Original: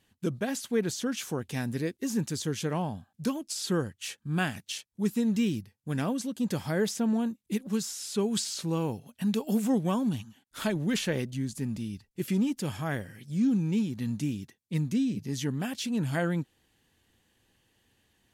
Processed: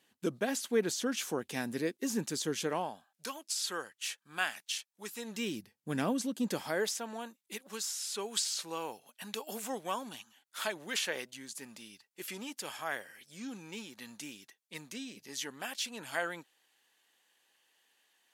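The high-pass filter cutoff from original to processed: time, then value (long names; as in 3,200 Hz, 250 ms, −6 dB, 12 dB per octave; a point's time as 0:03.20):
0:02.61 280 Hz
0:03.12 840 Hz
0:05.17 840 Hz
0:05.74 220 Hz
0:06.36 220 Hz
0:07.00 710 Hz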